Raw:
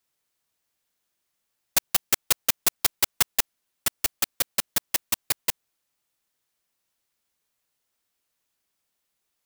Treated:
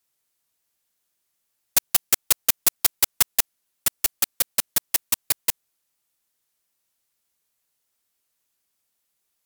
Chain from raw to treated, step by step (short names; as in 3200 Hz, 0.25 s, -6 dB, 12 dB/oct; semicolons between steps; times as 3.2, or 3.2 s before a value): bell 13000 Hz +6 dB 1.7 oct; gain -1 dB